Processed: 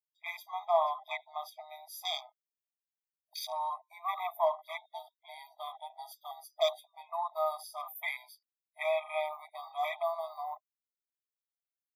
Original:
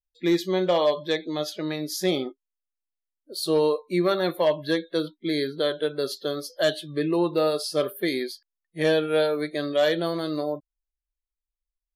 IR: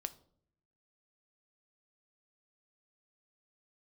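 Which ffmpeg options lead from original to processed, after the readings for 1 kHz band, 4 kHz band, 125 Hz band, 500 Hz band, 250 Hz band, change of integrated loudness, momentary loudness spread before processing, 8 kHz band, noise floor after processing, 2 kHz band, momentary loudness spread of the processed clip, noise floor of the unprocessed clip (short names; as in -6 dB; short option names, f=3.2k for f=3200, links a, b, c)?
-1.0 dB, -11.0 dB, under -40 dB, -12.5 dB, under -40 dB, -10.5 dB, 8 LU, -13.0 dB, under -85 dBFS, -9.0 dB, 15 LU, under -85 dBFS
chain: -af "afwtdn=0.0251,aexciter=amount=5.7:drive=5.8:freq=11k,afftfilt=real='re*eq(mod(floor(b*sr/1024/640),2),1)':imag='im*eq(mod(floor(b*sr/1024/640),2),1)':win_size=1024:overlap=0.75"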